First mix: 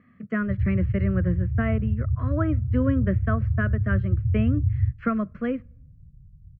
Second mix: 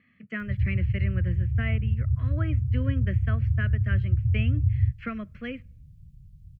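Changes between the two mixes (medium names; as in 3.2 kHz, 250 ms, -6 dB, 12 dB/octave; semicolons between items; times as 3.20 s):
speech -9.0 dB; master: add resonant high shelf 1.7 kHz +13 dB, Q 1.5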